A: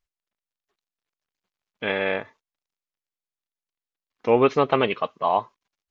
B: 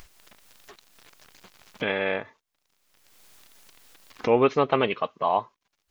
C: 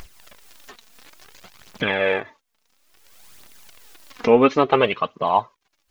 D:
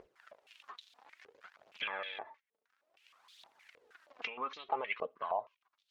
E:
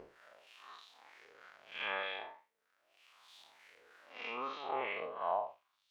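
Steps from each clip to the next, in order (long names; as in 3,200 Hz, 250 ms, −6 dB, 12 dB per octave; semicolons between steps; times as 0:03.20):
upward compression, threshold −21 dBFS; level −2 dB
phase shifter 0.58 Hz, delay 4.7 ms, feedback 45%; level +4.5 dB
brickwall limiter −10.5 dBFS, peak gain reduction 9 dB; downward compressor 10 to 1, threshold −23 dBFS, peak gain reduction 8.5 dB; band-pass on a step sequencer 6.4 Hz 470–3,600 Hz; level +1 dB
spectrum smeared in time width 150 ms; level +5 dB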